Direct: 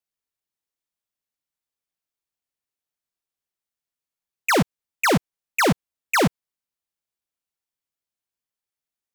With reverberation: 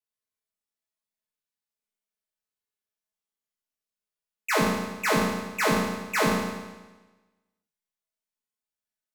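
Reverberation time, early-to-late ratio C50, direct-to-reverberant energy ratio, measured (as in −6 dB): 1.2 s, 0.5 dB, −7.0 dB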